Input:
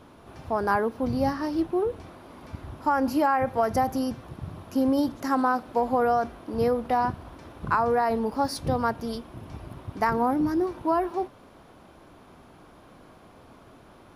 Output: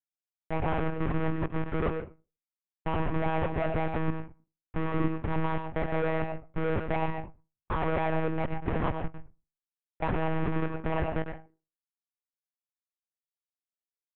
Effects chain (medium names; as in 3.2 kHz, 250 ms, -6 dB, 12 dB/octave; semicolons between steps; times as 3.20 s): Schmitt trigger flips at -23.5 dBFS; low-pass 2.4 kHz 24 dB/octave; on a send at -5.5 dB: reverberation RT60 0.30 s, pre-delay 95 ms; on the sum: monotone LPC vocoder at 8 kHz 160 Hz